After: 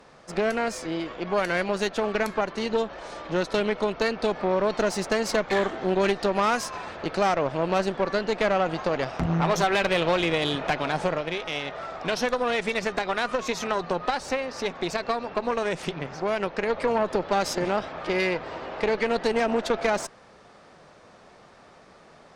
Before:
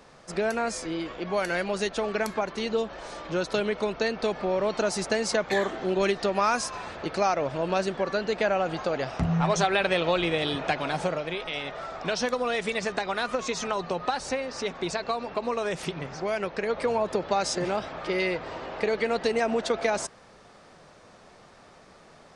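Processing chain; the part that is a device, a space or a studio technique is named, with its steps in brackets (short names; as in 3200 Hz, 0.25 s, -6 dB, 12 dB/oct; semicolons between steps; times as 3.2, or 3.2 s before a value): tube preamp driven hard (tube stage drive 22 dB, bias 0.8; low shelf 140 Hz -3.5 dB; high shelf 5100 Hz -6 dB); gain +6.5 dB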